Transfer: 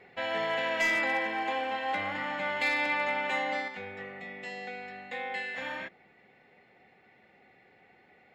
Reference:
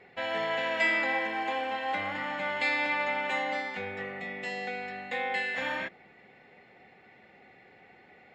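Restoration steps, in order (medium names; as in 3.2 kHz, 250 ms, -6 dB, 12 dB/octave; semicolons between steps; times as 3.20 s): clip repair -21.5 dBFS; gain correction +4.5 dB, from 3.68 s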